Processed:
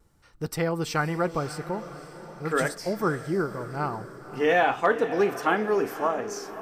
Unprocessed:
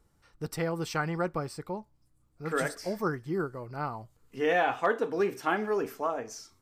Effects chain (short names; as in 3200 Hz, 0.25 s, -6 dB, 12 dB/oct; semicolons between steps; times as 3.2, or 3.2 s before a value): vibrato 0.64 Hz 14 cents; diffused feedback echo 0.549 s, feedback 49%, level -13 dB; gain +4.5 dB